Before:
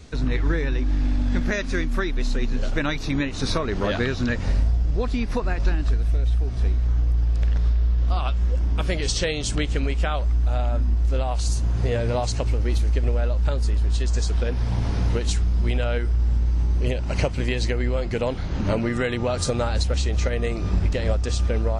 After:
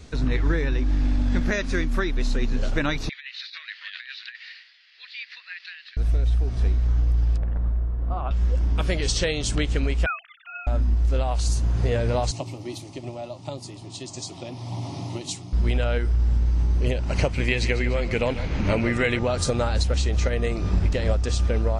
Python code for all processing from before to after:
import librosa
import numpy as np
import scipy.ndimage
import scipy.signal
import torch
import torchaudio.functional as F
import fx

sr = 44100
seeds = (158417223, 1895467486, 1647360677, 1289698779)

y = fx.chain(x, sr, fx.cheby1_bandpass(low_hz=1800.0, high_hz=4500.0, order=3),
    fx.over_compress(threshold_db=-36.0, ratio=-0.5), at=(3.09, 5.97))
y = fx.chain(y, sr, fx.lowpass(hz=1200.0, slope=12),
    fx.hum_notches(base_hz=60, count=9), at=(7.37, 8.31))
y = fx.chain(y, sr, fx.sine_speech(),
    fx.bessel_highpass(hz=2200.0, order=6), at=(10.06, 10.67))
y = fx.chain(y, sr, fx.highpass(hz=120.0, slope=24),
    fx.fixed_phaser(hz=310.0, stages=8), at=(12.31, 15.53))
y = fx.chain(y, sr, fx.peak_eq(hz=2300.0, db=9.0, octaves=0.48),
    fx.echo_feedback(ms=146, feedback_pct=52, wet_db=-13.0), at=(17.32, 19.19))